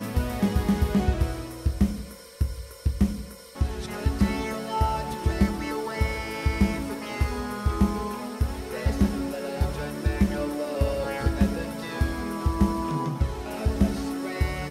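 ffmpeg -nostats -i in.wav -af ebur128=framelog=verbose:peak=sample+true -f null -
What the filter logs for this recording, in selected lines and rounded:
Integrated loudness:
  I:         -27.6 LUFS
  Threshold: -37.6 LUFS
Loudness range:
  LRA:         1.6 LU
  Threshold: -47.8 LUFS
  LRA low:   -28.8 LUFS
  LRA high:  -27.1 LUFS
Sample peak:
  Peak:       -8.8 dBFS
True peak:
  Peak:       -8.8 dBFS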